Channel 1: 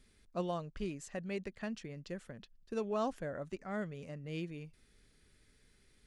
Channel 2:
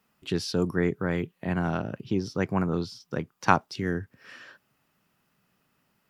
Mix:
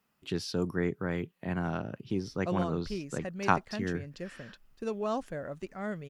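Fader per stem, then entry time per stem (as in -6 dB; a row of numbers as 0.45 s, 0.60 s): +2.5 dB, -5.0 dB; 2.10 s, 0.00 s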